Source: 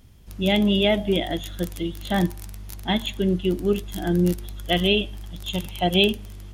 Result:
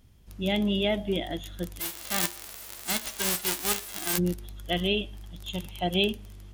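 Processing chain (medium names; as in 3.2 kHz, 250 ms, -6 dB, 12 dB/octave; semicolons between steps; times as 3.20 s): 1.79–4.17 s: formants flattened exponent 0.1; trim -6.5 dB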